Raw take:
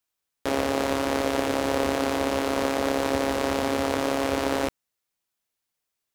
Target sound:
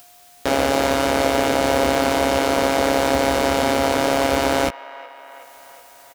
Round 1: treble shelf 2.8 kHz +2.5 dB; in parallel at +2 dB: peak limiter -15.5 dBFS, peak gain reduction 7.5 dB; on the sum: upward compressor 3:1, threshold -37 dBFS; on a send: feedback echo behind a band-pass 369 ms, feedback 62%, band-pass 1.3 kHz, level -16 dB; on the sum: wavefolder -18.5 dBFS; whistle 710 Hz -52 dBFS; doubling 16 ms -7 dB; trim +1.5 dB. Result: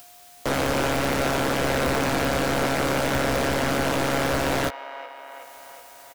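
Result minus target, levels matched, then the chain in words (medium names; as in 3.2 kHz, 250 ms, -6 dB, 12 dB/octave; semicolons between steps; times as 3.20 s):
wavefolder: distortion +27 dB
treble shelf 2.8 kHz +2.5 dB; in parallel at +2 dB: peak limiter -15.5 dBFS, peak gain reduction 7.5 dB; on the sum: upward compressor 3:1, threshold -37 dBFS; on a send: feedback echo behind a band-pass 369 ms, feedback 62%, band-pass 1.3 kHz, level -16 dB; on the sum: wavefolder -7 dBFS; whistle 710 Hz -52 dBFS; doubling 16 ms -7 dB; trim +1.5 dB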